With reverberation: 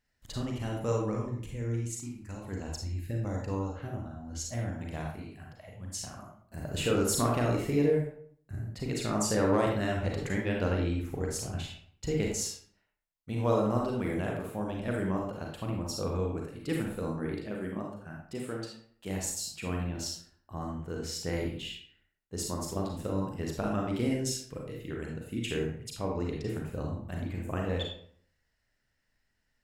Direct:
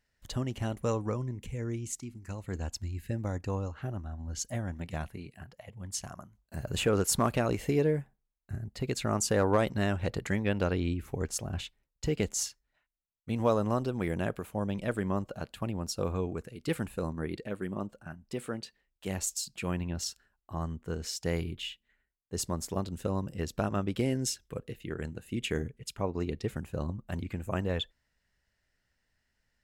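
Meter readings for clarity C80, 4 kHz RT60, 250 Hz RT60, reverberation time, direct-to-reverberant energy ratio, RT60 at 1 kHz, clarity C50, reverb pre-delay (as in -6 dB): 6.5 dB, 0.40 s, 0.60 s, 0.60 s, -1.0 dB, 0.60 s, 2.5 dB, 34 ms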